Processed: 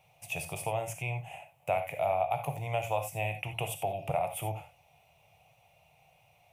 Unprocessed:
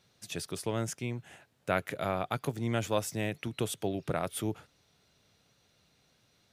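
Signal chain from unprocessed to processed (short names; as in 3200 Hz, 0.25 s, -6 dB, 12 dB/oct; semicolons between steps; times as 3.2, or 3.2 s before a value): EQ curve 160 Hz 0 dB, 230 Hz -21 dB, 400 Hz -10 dB, 750 Hz +14 dB, 1600 Hz -15 dB, 2500 Hz +9 dB, 4100 Hz -15 dB, 13000 Hz +4 dB; compressor 2:1, threshold -35 dBFS, peak gain reduction 9.5 dB; on a send: reverb, pre-delay 3 ms, DRR 5.5 dB; on the sum: gain +2.5 dB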